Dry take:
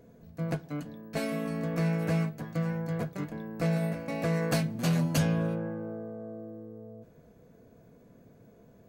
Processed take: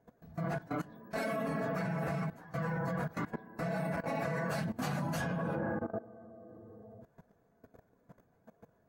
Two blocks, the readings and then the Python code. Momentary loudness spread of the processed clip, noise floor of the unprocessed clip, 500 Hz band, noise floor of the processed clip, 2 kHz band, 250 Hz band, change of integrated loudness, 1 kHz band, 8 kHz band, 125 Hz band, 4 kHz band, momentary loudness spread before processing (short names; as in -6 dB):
18 LU, -57 dBFS, -3.0 dB, -71 dBFS, -0.5 dB, -6.5 dB, -5.0 dB, +2.0 dB, -9.0 dB, -7.5 dB, -8.5 dB, 16 LU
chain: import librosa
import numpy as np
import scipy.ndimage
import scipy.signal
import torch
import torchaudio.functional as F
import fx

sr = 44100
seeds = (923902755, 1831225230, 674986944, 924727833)

y = fx.phase_scramble(x, sr, seeds[0], window_ms=50)
y = fx.band_shelf(y, sr, hz=1100.0, db=8.5, octaves=1.7)
y = fx.level_steps(y, sr, step_db=18)
y = y * librosa.db_to_amplitude(1.5)